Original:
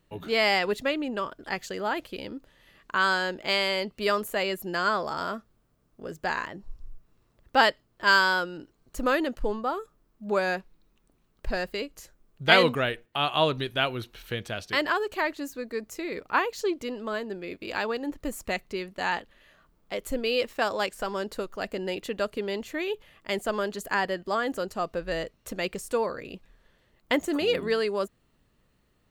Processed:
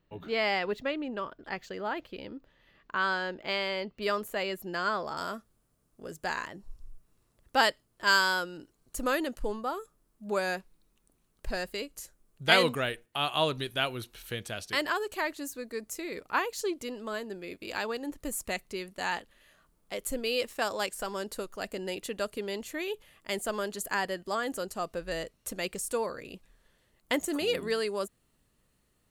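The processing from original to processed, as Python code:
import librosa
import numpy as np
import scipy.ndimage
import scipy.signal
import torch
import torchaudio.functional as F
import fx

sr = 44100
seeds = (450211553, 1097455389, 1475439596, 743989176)

y = fx.peak_eq(x, sr, hz=10000.0, db=fx.steps((0.0, -13.0), (4.02, -2.0), (5.17, 12.0)), octaves=1.3)
y = F.gain(torch.from_numpy(y), -4.5).numpy()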